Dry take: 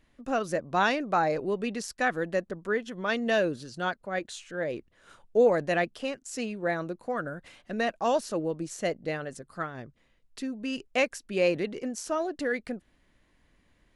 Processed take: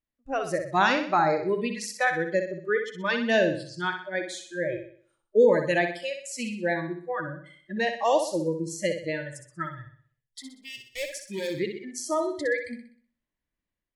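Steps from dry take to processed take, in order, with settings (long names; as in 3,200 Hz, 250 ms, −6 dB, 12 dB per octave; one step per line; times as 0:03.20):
0:09.65–0:11.58: gain into a clipping stage and back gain 31 dB
noise reduction from a noise print of the clip's start 26 dB
automatic gain control gain up to 4 dB
on a send: flutter between parallel walls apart 10.7 metres, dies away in 0.51 s
on the sum: level −1 dB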